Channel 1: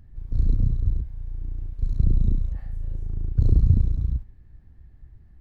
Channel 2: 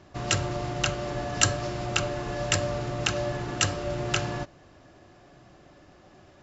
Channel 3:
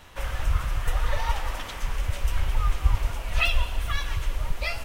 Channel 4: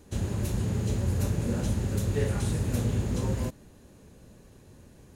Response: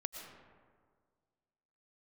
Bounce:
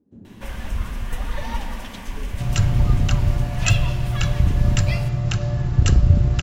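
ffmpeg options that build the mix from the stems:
-filter_complex "[0:a]highpass=43,equalizer=f=11000:w=1.5:g=-6,adelay=2400,volume=1.26,asplit=2[s0][s1];[s1]volume=0.422[s2];[1:a]lowshelf=f=210:t=q:w=1.5:g=12.5,adelay=2250,volume=0.708[s3];[2:a]bandreject=f=1300:w=7.6,adelay=250,volume=0.562,asplit=2[s4][s5];[s5]volume=0.668[s6];[3:a]bandpass=f=250:t=q:w=2.6:csg=0,volume=0.473,asplit=2[s7][s8];[s8]volume=0.422[s9];[4:a]atrim=start_sample=2205[s10];[s2][s6][s9]amix=inputs=3:normalize=0[s11];[s11][s10]afir=irnorm=-1:irlink=0[s12];[s0][s3][s4][s7][s12]amix=inputs=5:normalize=0"

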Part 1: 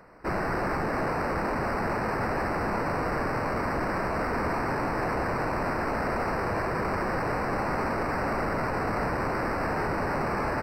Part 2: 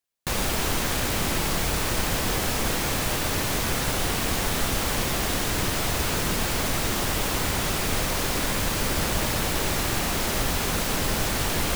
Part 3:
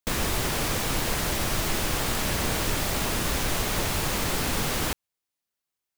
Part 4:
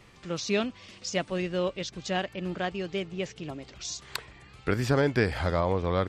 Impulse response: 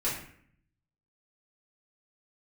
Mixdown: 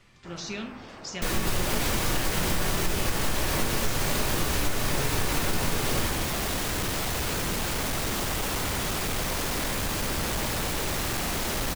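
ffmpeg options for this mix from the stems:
-filter_complex "[0:a]volume=0.141[s0];[1:a]asoftclip=type=tanh:threshold=0.0631,adelay=1200,volume=1[s1];[2:a]adelay=1150,volume=0.473,asplit=2[s2][s3];[s3]volume=0.708[s4];[3:a]equalizer=f=560:t=o:w=1.7:g=-9.5,acompressor=threshold=0.0355:ratio=6,volume=0.562,asplit=2[s5][s6];[s6]volume=0.376[s7];[4:a]atrim=start_sample=2205[s8];[s4][s7]amix=inputs=2:normalize=0[s9];[s9][s8]afir=irnorm=-1:irlink=0[s10];[s0][s1][s2][s5][s10]amix=inputs=5:normalize=0,acompressor=threshold=0.0891:ratio=5"

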